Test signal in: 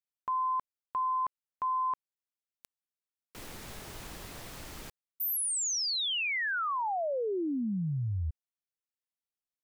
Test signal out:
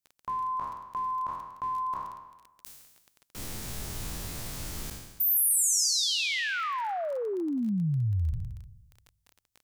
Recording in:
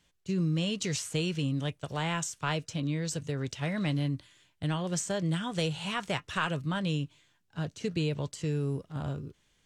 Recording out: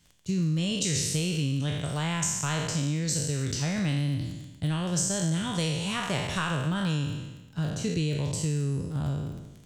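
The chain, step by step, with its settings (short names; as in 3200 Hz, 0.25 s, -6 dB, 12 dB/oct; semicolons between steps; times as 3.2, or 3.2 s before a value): spectral trails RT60 1.08 s; tone controls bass +8 dB, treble +8 dB; compressor 2:1, threshold -25 dBFS; crackle 21/s -37 dBFS; gain -1 dB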